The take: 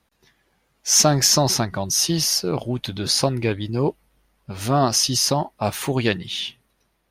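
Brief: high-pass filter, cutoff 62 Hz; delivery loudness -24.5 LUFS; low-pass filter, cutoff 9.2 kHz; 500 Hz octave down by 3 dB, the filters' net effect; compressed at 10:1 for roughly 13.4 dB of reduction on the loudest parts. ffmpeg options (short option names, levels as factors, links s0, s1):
-af "highpass=62,lowpass=9200,equalizer=f=500:t=o:g=-4,acompressor=threshold=0.0501:ratio=10,volume=1.88"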